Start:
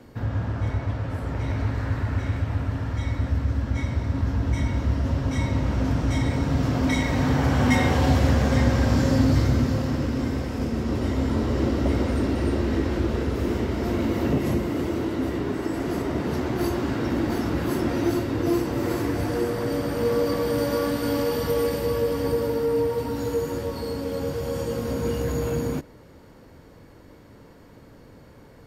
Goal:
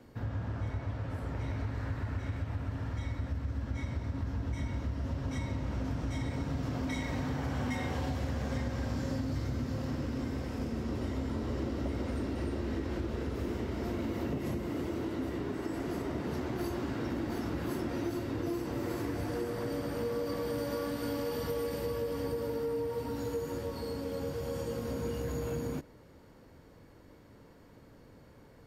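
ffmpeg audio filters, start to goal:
-af "acompressor=threshold=-23dB:ratio=6,volume=-7.5dB"

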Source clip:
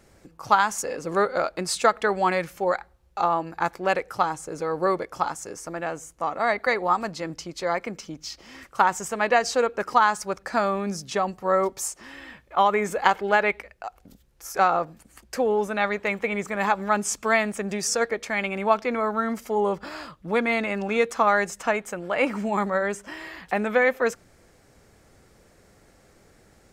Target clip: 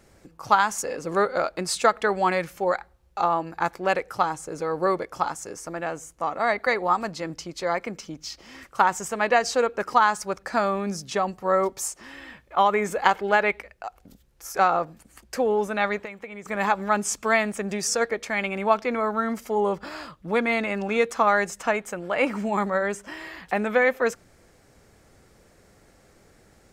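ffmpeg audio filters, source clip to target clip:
-filter_complex "[0:a]asettb=1/sr,asplit=3[a][b][c];[a]atrim=end=15.994[d];[b]atrim=start=15.99:end=16.46,asetpts=PTS-STARTPTS,afade=t=in:d=0.004:c=qsin,afade=t=out:st=0.466:d=0.004:c=qsin,acompressor=threshold=-34dB:ratio=16[e];[c]atrim=start=16.456[f];[d][e]acrossfade=d=0.004:c1=hsin:c2=qsin[g];[g][f]acrossfade=d=0.004:c1=qsin:c2=hsin"

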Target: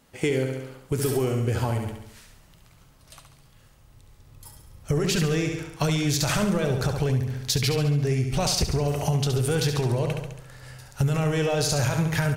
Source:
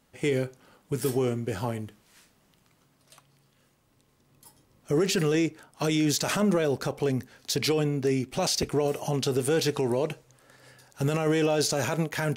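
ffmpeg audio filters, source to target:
-af "aecho=1:1:69|138|207|276|345|414|483:0.473|0.251|0.133|0.0704|0.0373|0.0198|0.0105,asubboost=boost=10.5:cutoff=85,acompressor=threshold=-27dB:ratio=4,volume=6dB"

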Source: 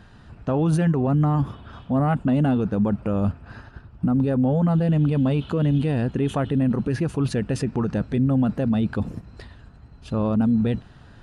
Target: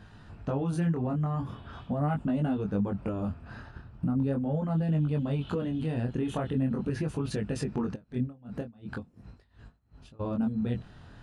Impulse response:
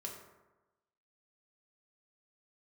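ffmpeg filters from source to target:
-filter_complex "[0:a]acompressor=threshold=-23dB:ratio=6,flanger=delay=19:depth=6.1:speed=0.41,asplit=3[a][b][c];[a]afade=t=out:st=7.94:d=0.02[d];[b]aeval=exprs='val(0)*pow(10,-25*(0.5-0.5*cos(2*PI*2.8*n/s))/20)':c=same,afade=t=in:st=7.94:d=0.02,afade=t=out:st=10.19:d=0.02[e];[c]afade=t=in:st=10.19:d=0.02[f];[d][e][f]amix=inputs=3:normalize=0"

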